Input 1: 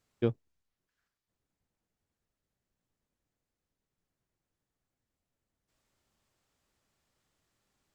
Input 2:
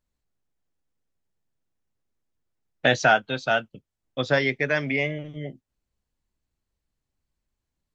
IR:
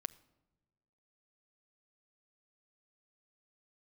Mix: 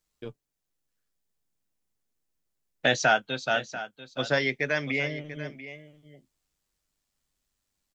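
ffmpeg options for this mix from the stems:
-filter_complex "[0:a]highshelf=f=2.7k:g=11.5,tremolo=f=98:d=0.571,flanger=delay=6.2:depth=3.3:regen=51:speed=0.3:shape=triangular,volume=-3.5dB[a];[1:a]highshelf=f=5.2k:g=10,volume=-4dB,asplit=2[b][c];[c]volume=-14dB,aecho=0:1:690:1[d];[a][b][d]amix=inputs=3:normalize=0,equalizer=f=90:t=o:w=0.52:g=-8"

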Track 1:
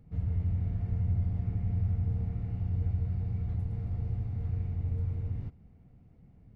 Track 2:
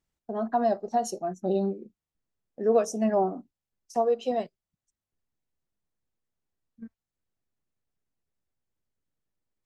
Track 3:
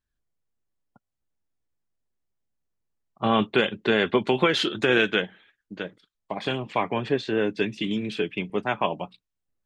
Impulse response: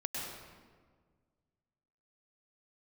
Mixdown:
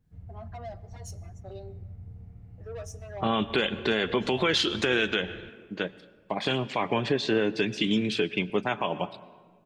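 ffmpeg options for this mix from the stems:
-filter_complex "[0:a]volume=-13.5dB[a];[1:a]highpass=f=1.2k:p=1,asoftclip=type=tanh:threshold=-30dB,asplit=2[b][c];[c]adelay=5.1,afreqshift=-0.56[d];[b][d]amix=inputs=2:normalize=1,volume=-4.5dB,asplit=2[e][f];[f]volume=-20.5dB[g];[2:a]adynamicequalizer=threshold=0.00708:dfrequency=5400:dqfactor=0.93:tfrequency=5400:tqfactor=0.93:attack=5:release=100:ratio=0.375:range=3.5:mode=boostabove:tftype=bell,volume=1.5dB,asplit=2[h][i];[i]volume=-20.5dB[j];[3:a]atrim=start_sample=2205[k];[g][j]amix=inputs=2:normalize=0[l];[l][k]afir=irnorm=-1:irlink=0[m];[a][e][h][m]amix=inputs=4:normalize=0,alimiter=limit=-14.5dB:level=0:latency=1:release=112"

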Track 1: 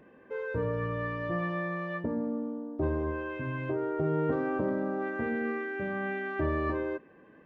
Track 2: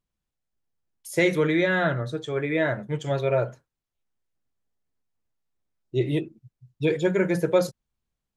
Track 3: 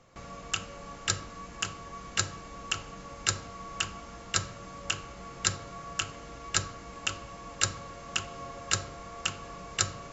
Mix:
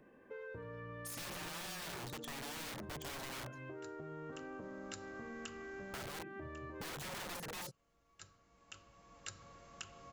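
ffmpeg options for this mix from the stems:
-filter_complex "[0:a]acrossover=split=480|1300[a][b][c];[a]acompressor=threshold=-42dB:ratio=4[d];[b]acompressor=threshold=-49dB:ratio=4[e];[c]acompressor=threshold=-47dB:ratio=4[f];[d][e][f]amix=inputs=3:normalize=0,volume=-6.5dB[g];[1:a]alimiter=limit=-18.5dB:level=0:latency=1:release=42,acompressor=threshold=-31dB:ratio=2.5,aeval=exprs='(mod(37.6*val(0)+1,2)-1)/37.6':c=same,volume=-3dB,asplit=2[h][i];[2:a]adelay=1650,volume=-14dB[j];[i]apad=whole_len=519394[k];[j][k]sidechaincompress=threshold=-60dB:ratio=8:attack=16:release=1200[l];[g][h][l]amix=inputs=3:normalize=0,acompressor=threshold=-43dB:ratio=6"

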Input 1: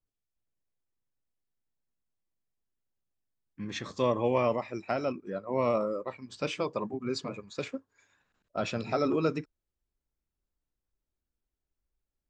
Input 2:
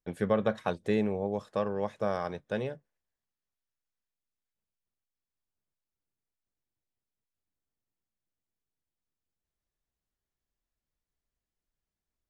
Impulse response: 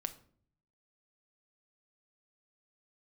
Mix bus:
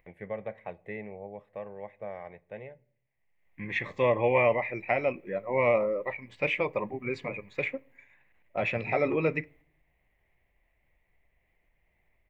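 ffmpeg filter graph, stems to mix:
-filter_complex "[0:a]highshelf=f=2.6k:g=7.5,bandreject=f=650:w=12,volume=0dB,asplit=3[a][b][c];[b]volume=-11.5dB[d];[1:a]bandreject=f=1.7k:w=23,acompressor=mode=upward:threshold=-37dB:ratio=2.5,volume=-6.5dB,asplit=2[e][f];[f]volume=-13.5dB[g];[c]apad=whole_len=542381[h];[e][h]sidechaingate=range=-7dB:threshold=-59dB:ratio=16:detection=peak[i];[2:a]atrim=start_sample=2205[j];[d][g]amix=inputs=2:normalize=0[k];[k][j]afir=irnorm=-1:irlink=0[l];[a][i][l]amix=inputs=3:normalize=0,firequalizer=gain_entry='entry(120,0);entry(240,-6);entry(610,4);entry(910,1);entry(1400,-10);entry(2000,13);entry(3100,-7);entry(4800,-24);entry(7800,-23);entry(12000,-14)':delay=0.05:min_phase=1"

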